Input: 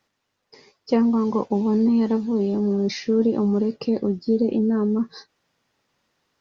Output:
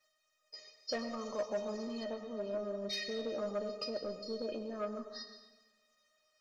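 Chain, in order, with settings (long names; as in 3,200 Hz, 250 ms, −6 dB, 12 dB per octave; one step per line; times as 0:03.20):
high-shelf EQ 5,600 Hz −11 dB
tuned comb filter 620 Hz, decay 0.18 s, harmonics all, mix 100%
dense smooth reverb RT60 1.1 s, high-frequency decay 0.8×, pre-delay 85 ms, DRR 8 dB
soft clipping −38.5 dBFS, distortion −19 dB
bass and treble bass −10 dB, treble +13 dB, from 0:02.03 treble +1 dB, from 0:03.28 treble +10 dB
feedback echo with a swinging delay time 120 ms, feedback 60%, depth 56 cents, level −22.5 dB
level +11.5 dB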